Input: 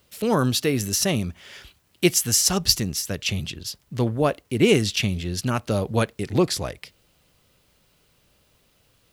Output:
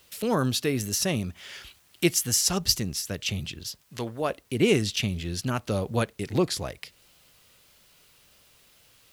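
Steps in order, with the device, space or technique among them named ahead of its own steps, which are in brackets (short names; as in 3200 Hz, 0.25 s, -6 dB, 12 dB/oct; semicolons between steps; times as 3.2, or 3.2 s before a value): noise-reduction cassette on a plain deck (mismatched tape noise reduction encoder only; wow and flutter; white noise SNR 39 dB); 3.82–4.3 low shelf 320 Hz -11 dB; gain -4 dB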